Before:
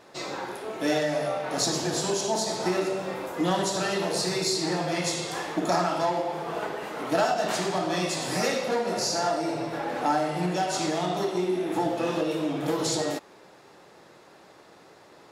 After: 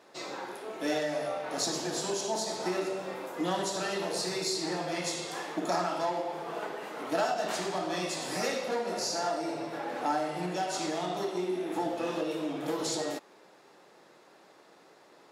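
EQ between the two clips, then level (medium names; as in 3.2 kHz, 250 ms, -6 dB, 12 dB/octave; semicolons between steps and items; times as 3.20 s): high-pass 190 Hz 12 dB/octave; -5.0 dB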